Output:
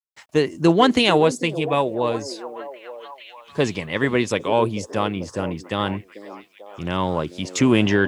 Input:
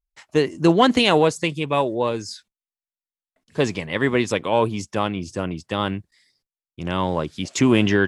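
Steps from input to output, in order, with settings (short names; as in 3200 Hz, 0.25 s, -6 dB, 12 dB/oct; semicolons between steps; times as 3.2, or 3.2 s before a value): delay with a stepping band-pass 0.442 s, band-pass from 370 Hz, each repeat 0.7 oct, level -10 dB; bit-crush 11-bit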